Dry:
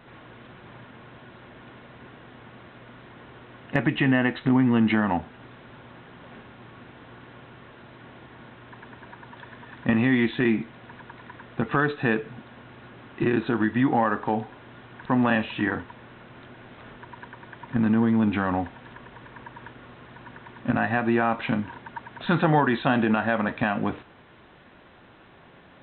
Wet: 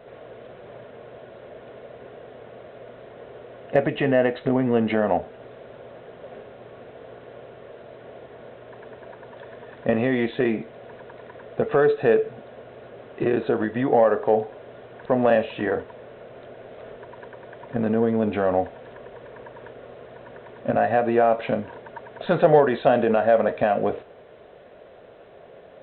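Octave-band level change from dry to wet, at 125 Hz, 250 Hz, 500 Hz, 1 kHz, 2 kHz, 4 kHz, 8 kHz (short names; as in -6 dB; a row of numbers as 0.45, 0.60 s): -3.5 dB, -3.0 dB, +10.0 dB, +2.0 dB, -3.5 dB, -3.0 dB, n/a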